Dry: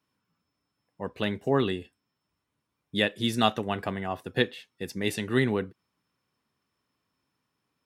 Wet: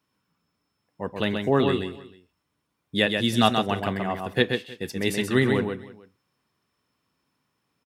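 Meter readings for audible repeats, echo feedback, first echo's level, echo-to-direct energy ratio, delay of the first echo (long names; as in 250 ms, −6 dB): 3, repeats not evenly spaced, −5.0 dB, −5.0 dB, 130 ms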